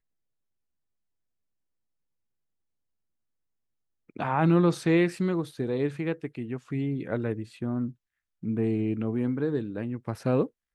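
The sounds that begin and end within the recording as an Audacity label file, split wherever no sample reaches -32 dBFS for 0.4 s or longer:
4.170000	7.900000	sound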